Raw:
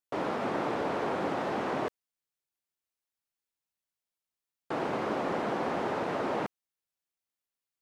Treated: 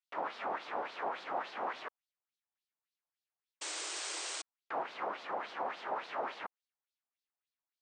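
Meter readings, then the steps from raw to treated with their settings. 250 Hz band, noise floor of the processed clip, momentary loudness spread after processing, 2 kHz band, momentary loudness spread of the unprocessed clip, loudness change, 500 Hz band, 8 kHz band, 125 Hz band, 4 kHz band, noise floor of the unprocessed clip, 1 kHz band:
-18.0 dB, under -85 dBFS, 6 LU, -4.0 dB, 4 LU, -7.5 dB, -10.0 dB, +12.5 dB, under -20 dB, +2.0 dB, under -85 dBFS, -4.5 dB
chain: peak limiter -25 dBFS, peak gain reduction 6 dB; LFO band-pass sine 3.5 Hz 750–4300 Hz; painted sound noise, 3.61–4.42 s, 300–9000 Hz -44 dBFS; trim +3.5 dB

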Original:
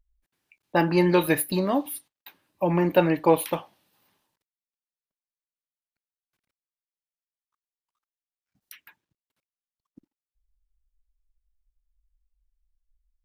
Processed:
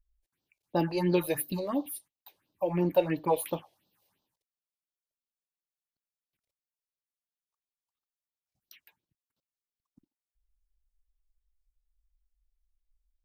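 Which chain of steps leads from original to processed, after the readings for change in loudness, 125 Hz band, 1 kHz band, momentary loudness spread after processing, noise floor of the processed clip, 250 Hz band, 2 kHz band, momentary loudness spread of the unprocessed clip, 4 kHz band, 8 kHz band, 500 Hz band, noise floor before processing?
-6.5 dB, -6.0 dB, -8.0 dB, 10 LU, under -85 dBFS, -7.0 dB, -11.5 dB, 11 LU, -7.5 dB, -5.5 dB, -6.0 dB, under -85 dBFS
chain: phase shifter stages 4, 2.9 Hz, lowest notch 200–2100 Hz; trim -4.5 dB

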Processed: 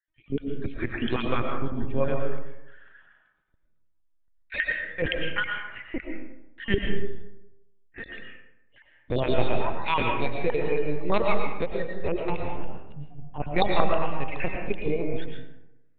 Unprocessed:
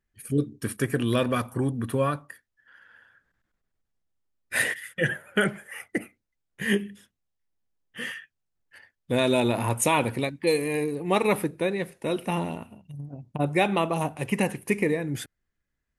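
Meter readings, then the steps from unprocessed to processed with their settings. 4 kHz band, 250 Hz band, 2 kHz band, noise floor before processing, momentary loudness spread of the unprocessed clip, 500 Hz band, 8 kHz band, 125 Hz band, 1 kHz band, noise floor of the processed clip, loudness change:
-2.0 dB, -4.5 dB, -1.5 dB, -81 dBFS, 13 LU, -1.5 dB, under -40 dB, -3.5 dB, 0.0 dB, -64 dBFS, -2.5 dB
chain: random holes in the spectrogram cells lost 42%; LPC vocoder at 8 kHz pitch kept; algorithmic reverb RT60 0.9 s, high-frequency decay 0.5×, pre-delay 75 ms, DRR 1.5 dB; trim -1 dB

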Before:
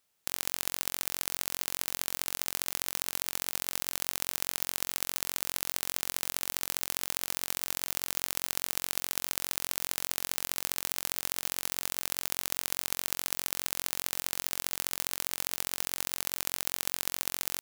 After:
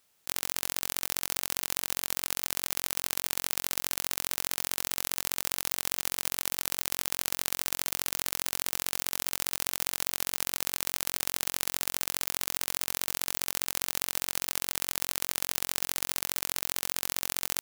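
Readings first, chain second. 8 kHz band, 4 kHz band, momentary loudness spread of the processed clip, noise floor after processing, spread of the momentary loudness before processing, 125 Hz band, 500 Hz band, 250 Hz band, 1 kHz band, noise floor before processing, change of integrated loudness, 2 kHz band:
+2.0 dB, +2.0 dB, 0 LU, -74 dBFS, 0 LU, +2.0 dB, +2.0 dB, +2.0 dB, +2.0 dB, -76 dBFS, +2.0 dB, +2.0 dB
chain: compressor with a negative ratio -38 dBFS, ratio -0.5; trim +4 dB

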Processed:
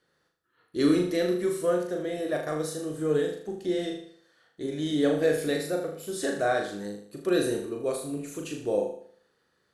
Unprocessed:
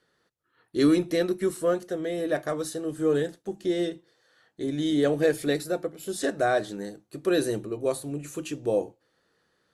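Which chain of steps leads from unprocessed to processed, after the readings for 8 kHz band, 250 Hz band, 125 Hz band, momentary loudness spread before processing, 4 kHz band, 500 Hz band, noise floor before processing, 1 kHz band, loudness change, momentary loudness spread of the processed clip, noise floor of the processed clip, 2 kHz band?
-1.0 dB, -1.5 dB, -1.5 dB, 11 LU, -1.0 dB, -1.0 dB, -73 dBFS, -1.5 dB, -1.0 dB, 11 LU, -72 dBFS, -1.0 dB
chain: flutter echo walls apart 6.7 m, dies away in 0.57 s; trim -3 dB

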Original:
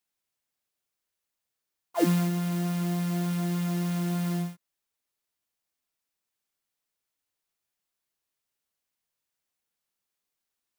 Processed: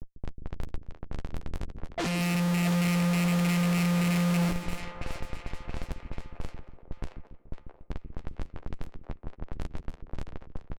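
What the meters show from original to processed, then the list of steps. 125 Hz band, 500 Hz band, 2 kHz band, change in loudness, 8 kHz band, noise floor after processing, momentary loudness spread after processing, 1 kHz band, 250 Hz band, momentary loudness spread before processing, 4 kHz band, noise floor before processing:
+2.5 dB, +0.5 dB, +9.0 dB, -0.5 dB, +3.0 dB, -56 dBFS, 19 LU, +3.0 dB, +1.5 dB, 6 LU, +6.0 dB, under -85 dBFS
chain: rattle on loud lows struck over -27 dBFS, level -24 dBFS; hum notches 50/100/150/200 Hz; resampled via 16 kHz; gate with hold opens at -24 dBFS; peaking EQ 450 Hz -11.5 dB 2.7 oct; in parallel at -6 dB: sine folder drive 10 dB, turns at -18.5 dBFS; on the sum: added noise pink -41 dBFS; Schmitt trigger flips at -30.5 dBFS; doubling 13 ms -12 dB; two-band feedback delay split 400 Hz, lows 143 ms, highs 671 ms, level -7.5 dB; level-controlled noise filter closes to 300 Hz, open at -27 dBFS; speakerphone echo 230 ms, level -17 dB; trim +1 dB

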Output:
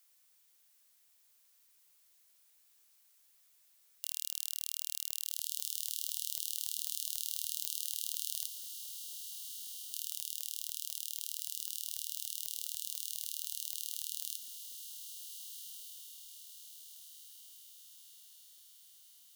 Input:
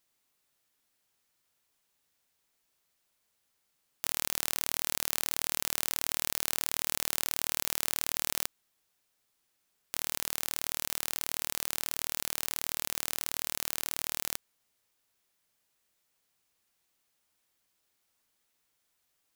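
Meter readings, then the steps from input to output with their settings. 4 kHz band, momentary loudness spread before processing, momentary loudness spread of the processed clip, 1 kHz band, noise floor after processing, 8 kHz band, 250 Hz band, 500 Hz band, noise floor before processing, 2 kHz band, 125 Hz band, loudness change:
-4.5 dB, 3 LU, 17 LU, under -35 dB, -68 dBFS, -4.5 dB, under -40 dB, under -40 dB, -77 dBFS, -24.0 dB, under -40 dB, -6.5 dB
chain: brick-wall FIR high-pass 2.8 kHz; added noise blue -63 dBFS; echo that smears into a reverb 1546 ms, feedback 54%, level -7 dB; trim -5.5 dB

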